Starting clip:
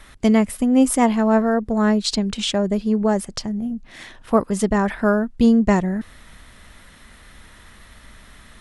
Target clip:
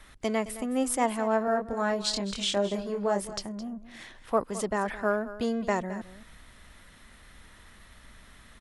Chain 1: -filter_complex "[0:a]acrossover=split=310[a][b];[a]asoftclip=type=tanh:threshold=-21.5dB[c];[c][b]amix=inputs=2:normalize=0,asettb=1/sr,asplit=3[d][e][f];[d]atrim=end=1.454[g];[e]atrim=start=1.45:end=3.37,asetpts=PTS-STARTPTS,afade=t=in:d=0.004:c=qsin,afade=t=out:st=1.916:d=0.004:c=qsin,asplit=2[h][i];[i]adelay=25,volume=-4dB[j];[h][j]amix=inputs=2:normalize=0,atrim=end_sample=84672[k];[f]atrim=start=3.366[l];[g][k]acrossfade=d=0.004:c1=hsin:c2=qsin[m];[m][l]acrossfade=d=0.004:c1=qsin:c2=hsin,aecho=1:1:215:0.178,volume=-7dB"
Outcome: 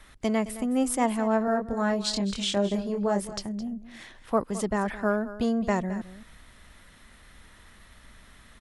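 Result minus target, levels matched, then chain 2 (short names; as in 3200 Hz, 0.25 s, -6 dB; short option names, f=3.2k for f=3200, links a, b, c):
soft clip: distortion -6 dB
-filter_complex "[0:a]acrossover=split=310[a][b];[a]asoftclip=type=tanh:threshold=-32dB[c];[c][b]amix=inputs=2:normalize=0,asettb=1/sr,asplit=3[d][e][f];[d]atrim=end=1.454[g];[e]atrim=start=1.45:end=3.37,asetpts=PTS-STARTPTS,afade=t=in:d=0.004:c=qsin,afade=t=out:st=1.916:d=0.004:c=qsin,asplit=2[h][i];[i]adelay=25,volume=-4dB[j];[h][j]amix=inputs=2:normalize=0,atrim=end_sample=84672[k];[f]atrim=start=3.366[l];[g][k]acrossfade=d=0.004:c1=hsin:c2=qsin[m];[m][l]acrossfade=d=0.004:c1=qsin:c2=hsin,aecho=1:1:215:0.178,volume=-7dB"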